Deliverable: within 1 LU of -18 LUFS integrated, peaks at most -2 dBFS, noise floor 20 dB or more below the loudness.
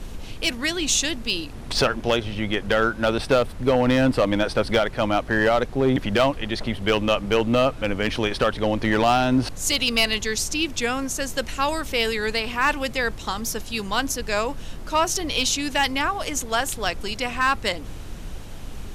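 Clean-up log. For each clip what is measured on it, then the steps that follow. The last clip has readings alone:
clipped samples 0.5%; clipping level -11.5 dBFS; noise floor -35 dBFS; noise floor target -43 dBFS; loudness -22.5 LUFS; peak level -11.5 dBFS; loudness target -18.0 LUFS
-> clip repair -11.5 dBFS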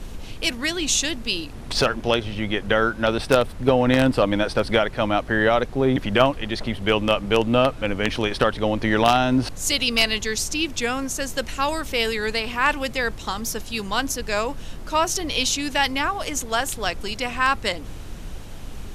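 clipped samples 0.0%; noise floor -35 dBFS; noise floor target -42 dBFS
-> noise print and reduce 7 dB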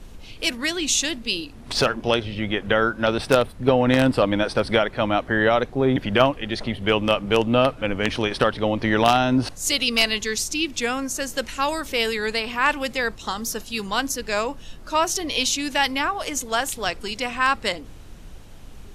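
noise floor -41 dBFS; noise floor target -42 dBFS
-> noise print and reduce 6 dB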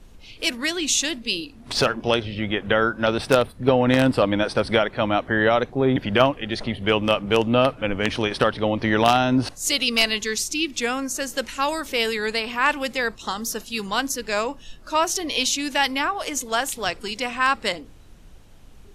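noise floor -46 dBFS; loudness -22.0 LUFS; peak level -2.5 dBFS; loudness target -18.0 LUFS
-> trim +4 dB; peak limiter -2 dBFS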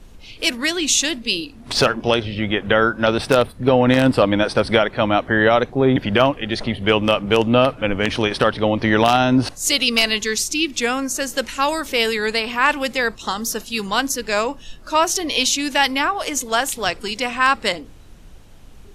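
loudness -18.5 LUFS; peak level -2.0 dBFS; noise floor -42 dBFS

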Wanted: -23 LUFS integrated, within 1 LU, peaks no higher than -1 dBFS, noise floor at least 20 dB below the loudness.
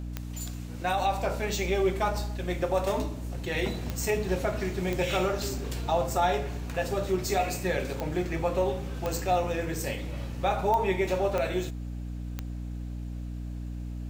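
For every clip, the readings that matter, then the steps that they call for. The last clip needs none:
clicks found 8; hum 60 Hz; highest harmonic 300 Hz; hum level -33 dBFS; loudness -30.0 LUFS; peak level -14.0 dBFS; loudness target -23.0 LUFS
-> de-click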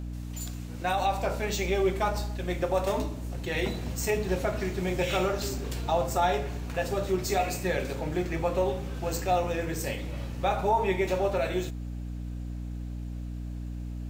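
clicks found 0; hum 60 Hz; highest harmonic 300 Hz; hum level -33 dBFS
-> hum notches 60/120/180/240/300 Hz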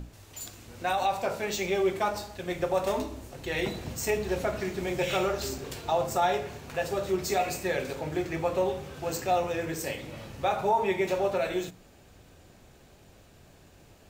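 hum not found; loudness -30.0 LUFS; peak level -14.5 dBFS; loudness target -23.0 LUFS
-> trim +7 dB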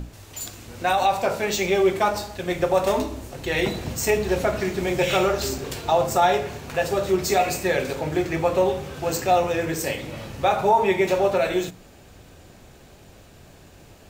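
loudness -23.0 LUFS; peak level -7.5 dBFS; noise floor -49 dBFS

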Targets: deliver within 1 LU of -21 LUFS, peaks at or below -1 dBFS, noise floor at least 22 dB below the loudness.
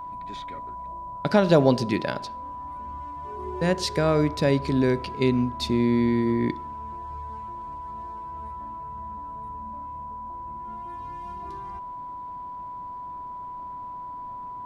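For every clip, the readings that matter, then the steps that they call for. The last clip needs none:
steady tone 990 Hz; tone level -34 dBFS; loudness -28.0 LUFS; peak level -5.0 dBFS; loudness target -21.0 LUFS
-> band-stop 990 Hz, Q 30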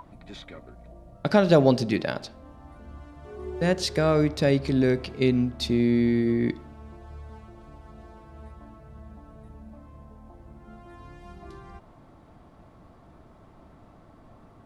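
steady tone not found; loudness -23.5 LUFS; peak level -5.5 dBFS; loudness target -21.0 LUFS
-> trim +2.5 dB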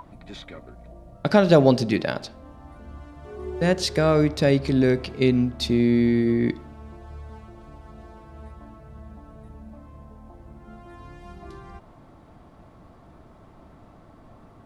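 loudness -21.0 LUFS; peak level -3.0 dBFS; noise floor -51 dBFS

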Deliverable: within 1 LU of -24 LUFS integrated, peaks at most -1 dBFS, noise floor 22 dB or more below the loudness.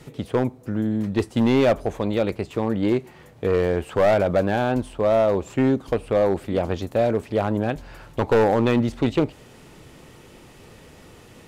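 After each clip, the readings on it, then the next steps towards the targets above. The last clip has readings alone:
clipped samples 1.4%; clipping level -12.5 dBFS; loudness -22.5 LUFS; peak level -12.5 dBFS; loudness target -24.0 LUFS
-> clip repair -12.5 dBFS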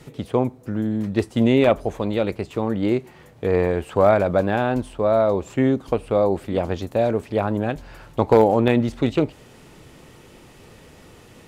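clipped samples 0.0%; loudness -21.0 LUFS; peak level -3.5 dBFS; loudness target -24.0 LUFS
-> trim -3 dB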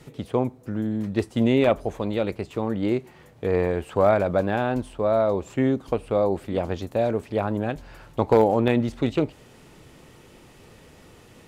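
loudness -24.0 LUFS; peak level -6.5 dBFS; noise floor -51 dBFS

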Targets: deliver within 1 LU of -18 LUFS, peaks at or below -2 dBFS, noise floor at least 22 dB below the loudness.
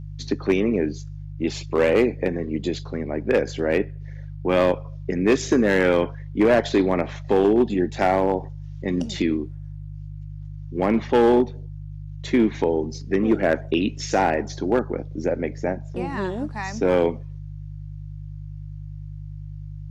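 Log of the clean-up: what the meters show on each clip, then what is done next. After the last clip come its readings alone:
clipped samples 0.8%; clipping level -11.0 dBFS; hum 50 Hz; highest harmonic 150 Hz; hum level -33 dBFS; loudness -22.5 LUFS; peak level -11.0 dBFS; loudness target -18.0 LUFS
-> clip repair -11 dBFS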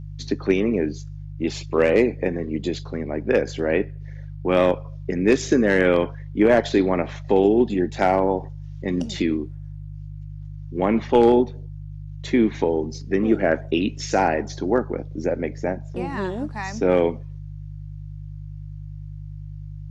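clipped samples 0.0%; hum 50 Hz; highest harmonic 150 Hz; hum level -33 dBFS
-> de-hum 50 Hz, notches 3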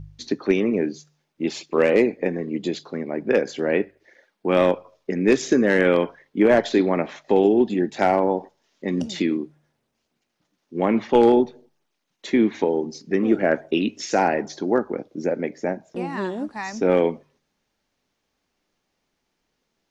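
hum not found; loudness -22.0 LUFS; peak level -4.0 dBFS; loudness target -18.0 LUFS
-> trim +4 dB; peak limiter -2 dBFS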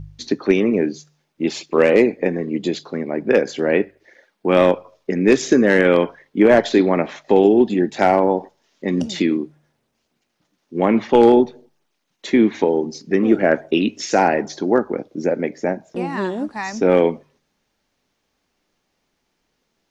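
loudness -18.0 LUFS; peak level -2.0 dBFS; noise floor -72 dBFS

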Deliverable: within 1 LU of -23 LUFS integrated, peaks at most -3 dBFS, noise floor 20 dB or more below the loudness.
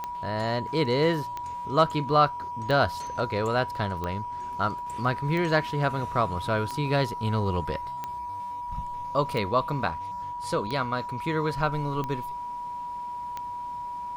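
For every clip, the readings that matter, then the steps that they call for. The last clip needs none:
clicks found 11; steady tone 970 Hz; tone level -32 dBFS; loudness -28.0 LUFS; peak level -8.0 dBFS; loudness target -23.0 LUFS
-> de-click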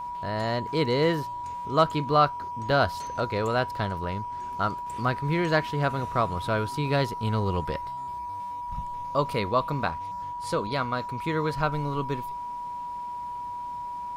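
clicks found 0; steady tone 970 Hz; tone level -32 dBFS
-> band-stop 970 Hz, Q 30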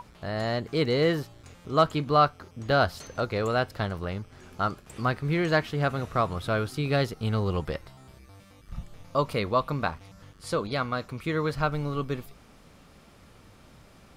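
steady tone not found; loudness -28.0 LUFS; peak level -9.5 dBFS; loudness target -23.0 LUFS
-> trim +5 dB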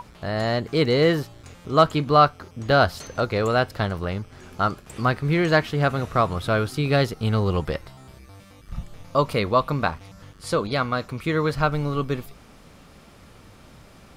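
loudness -23.0 LUFS; peak level -4.5 dBFS; noise floor -49 dBFS

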